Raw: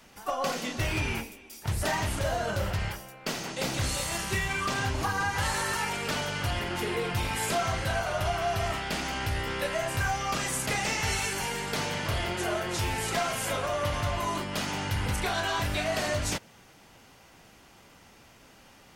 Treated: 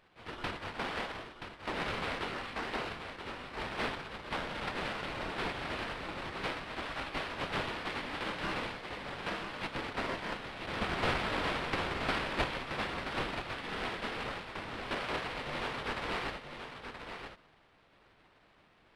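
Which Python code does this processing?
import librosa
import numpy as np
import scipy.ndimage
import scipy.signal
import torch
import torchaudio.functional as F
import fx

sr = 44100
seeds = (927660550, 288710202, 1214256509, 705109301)

y = fx.spec_gate(x, sr, threshold_db=-20, keep='weak')
y = fx.high_shelf(y, sr, hz=5400.0, db=11.0, at=(10.81, 12.44))
y = fx.sample_hold(y, sr, seeds[0], rate_hz=6700.0, jitter_pct=20)
y = fx.spacing_loss(y, sr, db_at_10k=23)
y = y + 10.0 ** (-8.0 / 20.0) * np.pad(y, (int(977 * sr / 1000.0), 0))[:len(y)]
y = y * 10.0 ** (6.0 / 20.0)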